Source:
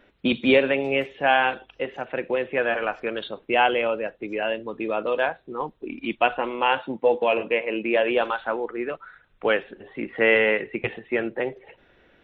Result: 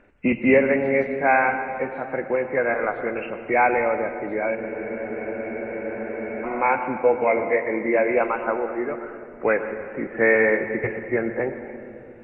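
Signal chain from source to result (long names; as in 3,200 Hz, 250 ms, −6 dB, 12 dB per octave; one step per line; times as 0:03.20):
hearing-aid frequency compression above 1,500 Hz 1.5 to 1
low-shelf EQ 130 Hz +4.5 dB
on a send at −8.5 dB: convolution reverb RT60 2.9 s, pre-delay 101 ms
on the sum: frozen spectrum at 0:04.58, 1.87 s
level +1 dB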